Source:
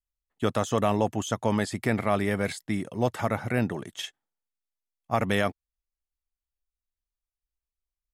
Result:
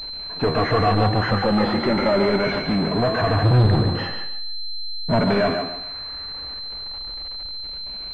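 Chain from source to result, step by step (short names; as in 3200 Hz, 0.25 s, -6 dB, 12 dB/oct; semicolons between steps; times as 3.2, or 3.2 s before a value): moving spectral ripple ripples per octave 1.6, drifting +0.38 Hz, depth 19 dB; 3.42–5.2 tilt -4.5 dB/oct; soft clip -11.5 dBFS, distortion -9 dB; flange 0.84 Hz, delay 8.5 ms, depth 4.8 ms, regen +69%; power-law curve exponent 0.35; on a send: thinning echo 0.143 s, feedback 27%, high-pass 160 Hz, level -6 dB; on the sum: pulse-width modulation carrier 4100 Hz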